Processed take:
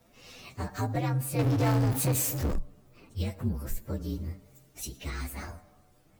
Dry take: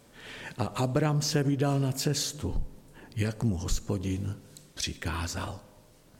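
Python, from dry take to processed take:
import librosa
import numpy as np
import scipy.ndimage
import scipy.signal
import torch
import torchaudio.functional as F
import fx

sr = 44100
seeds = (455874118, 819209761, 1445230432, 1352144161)

y = fx.partial_stretch(x, sr, pct=121)
y = fx.power_curve(y, sr, exponent=0.5, at=(1.39, 2.6))
y = F.gain(torch.from_numpy(y), -1.0).numpy()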